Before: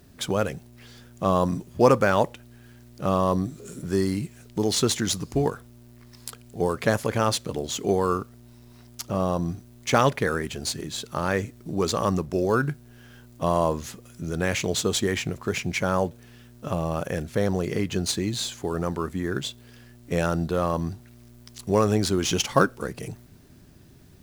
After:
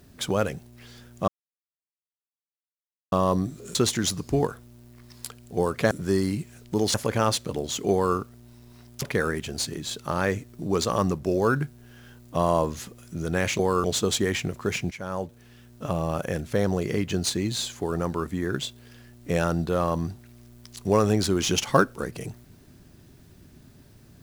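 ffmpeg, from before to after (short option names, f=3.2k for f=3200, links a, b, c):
-filter_complex "[0:a]asplit=10[a][b][c][d][e][f][g][h][i][j];[a]atrim=end=1.28,asetpts=PTS-STARTPTS,afade=t=out:st=1.276:d=0.004:c=hsin[k];[b]atrim=start=1.28:end=3.12,asetpts=PTS-STARTPTS,volume=0[l];[c]atrim=start=3.12:end=3.752,asetpts=PTS-STARTPTS,afade=t=in:d=0.004:c=hsin[m];[d]atrim=start=4.778:end=6.942[n];[e]atrim=start=3.748:end=4.782[o];[f]atrim=start=6.938:end=9.022[p];[g]atrim=start=10.088:end=14.662[q];[h]atrim=start=7.918:end=8.172[r];[i]atrim=start=14.658:end=15.73,asetpts=PTS-STARTPTS,afade=t=out:st=1.068:d=0.004:c=hsin:silence=0.188365[s];[j]atrim=start=15.73,asetpts=PTS-STARTPTS,afade=t=in:d=1.24:c=qsin:silence=0.188365[t];[k][l][m]concat=n=3:v=0:a=1[u];[u][n]acrossfade=d=0.004:c1=hsin:c2=hsin[v];[v][o]acrossfade=d=0.004:c1=hsin:c2=hsin[w];[w][p]acrossfade=d=0.004:c1=hsin:c2=hsin[x];[x][q]acrossfade=d=0.004:c1=hsin:c2=hsin[y];[y][r]acrossfade=d=0.004:c1=hsin:c2=hsin[z];[s][t]concat=n=2:v=0:a=1[aa];[z][aa]acrossfade=d=0.004:c1=hsin:c2=hsin"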